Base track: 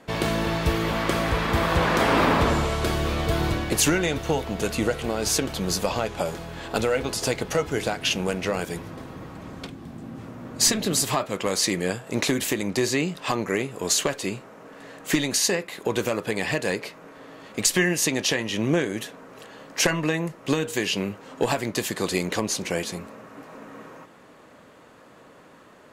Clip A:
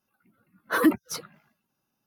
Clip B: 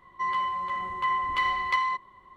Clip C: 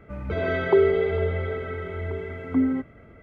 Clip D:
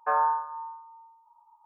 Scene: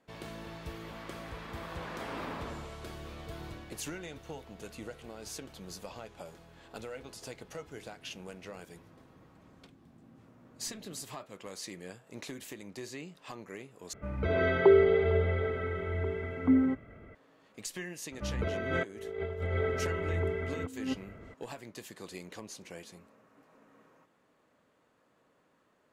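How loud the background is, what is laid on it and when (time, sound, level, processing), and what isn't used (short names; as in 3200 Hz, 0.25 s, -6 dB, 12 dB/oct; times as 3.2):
base track -19.5 dB
13.93 replace with C -2.5 dB
18.12 add C -5 dB + negative-ratio compressor -28 dBFS, ratio -0.5
not used: A, B, D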